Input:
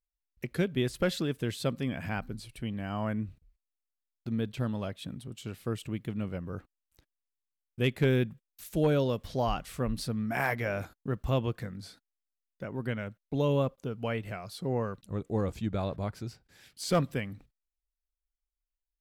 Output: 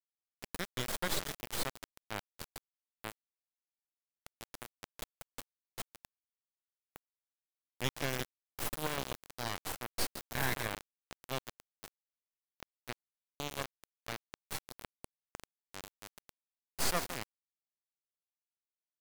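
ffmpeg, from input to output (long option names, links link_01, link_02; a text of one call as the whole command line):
ffmpeg -i in.wav -filter_complex "[0:a]highpass=frequency=43:poles=1,aderivative,bandreject=frequency=2600:width=5.2,asplit=2[link_01][link_02];[link_02]asplit=6[link_03][link_04][link_05][link_06][link_07][link_08];[link_03]adelay=141,afreqshift=70,volume=-12dB[link_09];[link_04]adelay=282,afreqshift=140,volume=-16.7dB[link_10];[link_05]adelay=423,afreqshift=210,volume=-21.5dB[link_11];[link_06]adelay=564,afreqshift=280,volume=-26.2dB[link_12];[link_07]adelay=705,afreqshift=350,volume=-30.9dB[link_13];[link_08]adelay=846,afreqshift=420,volume=-35.7dB[link_14];[link_09][link_10][link_11][link_12][link_13][link_14]amix=inputs=6:normalize=0[link_15];[link_01][link_15]amix=inputs=2:normalize=0,acompressor=mode=upward:threshold=-52dB:ratio=2.5,asplit=2[link_16][link_17];[link_17]adelay=163.3,volume=-8dB,highshelf=frequency=4000:gain=-3.67[link_18];[link_16][link_18]amix=inputs=2:normalize=0,acrusher=bits=4:dc=4:mix=0:aa=0.000001,highshelf=frequency=2300:gain=-9.5,volume=16.5dB" out.wav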